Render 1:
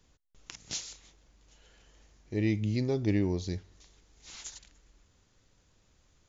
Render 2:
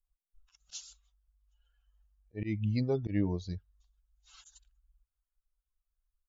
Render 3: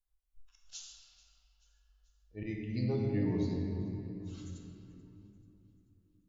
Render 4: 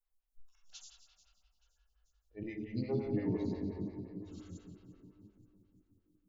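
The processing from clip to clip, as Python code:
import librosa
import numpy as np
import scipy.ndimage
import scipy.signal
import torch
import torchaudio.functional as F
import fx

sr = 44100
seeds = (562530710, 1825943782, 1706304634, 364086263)

y1 = fx.bin_expand(x, sr, power=2.0)
y1 = fx.notch(y1, sr, hz=370.0, q=12.0)
y1 = fx.auto_swell(y1, sr, attack_ms=128.0)
y1 = y1 * 10.0 ** (2.0 / 20.0)
y2 = fx.echo_feedback(y1, sr, ms=436, feedback_pct=51, wet_db=-21.5)
y2 = fx.rider(y2, sr, range_db=10, speed_s=0.5)
y2 = fx.room_shoebox(y2, sr, seeds[0], volume_m3=140.0, walls='hard', distance_m=0.53)
y2 = y2 * 10.0 ** (-3.5 / 20.0)
y3 = fx.stagger_phaser(y2, sr, hz=5.7)
y3 = y3 * 10.0 ** (1.0 / 20.0)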